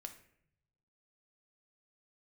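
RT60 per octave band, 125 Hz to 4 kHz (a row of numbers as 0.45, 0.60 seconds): 1.5, 1.0, 0.75, 0.60, 0.70, 0.45 seconds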